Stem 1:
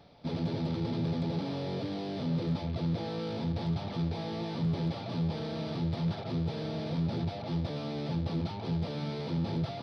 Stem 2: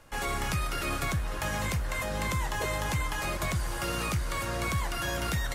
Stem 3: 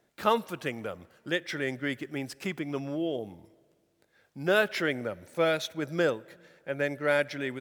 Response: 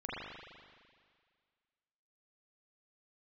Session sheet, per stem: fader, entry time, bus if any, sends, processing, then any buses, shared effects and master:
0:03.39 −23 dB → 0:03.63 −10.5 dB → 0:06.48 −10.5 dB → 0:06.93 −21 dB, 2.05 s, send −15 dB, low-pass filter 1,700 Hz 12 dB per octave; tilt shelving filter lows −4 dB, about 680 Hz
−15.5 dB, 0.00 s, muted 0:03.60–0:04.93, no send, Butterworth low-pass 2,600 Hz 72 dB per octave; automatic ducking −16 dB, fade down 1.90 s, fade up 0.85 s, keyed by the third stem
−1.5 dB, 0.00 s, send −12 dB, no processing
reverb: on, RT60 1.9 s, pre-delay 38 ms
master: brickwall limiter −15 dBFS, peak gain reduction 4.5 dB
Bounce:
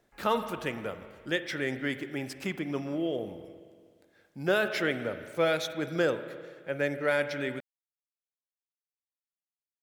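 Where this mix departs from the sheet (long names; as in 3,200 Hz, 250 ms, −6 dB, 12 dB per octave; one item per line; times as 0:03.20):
stem 1: muted
stem 2 −15.5 dB → −24.5 dB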